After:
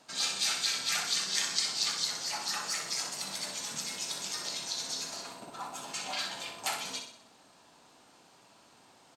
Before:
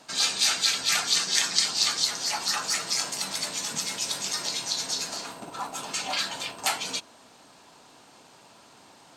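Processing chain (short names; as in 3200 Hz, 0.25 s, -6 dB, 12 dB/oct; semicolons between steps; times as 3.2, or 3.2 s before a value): feedback echo 62 ms, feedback 48%, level -7 dB; gain -7.5 dB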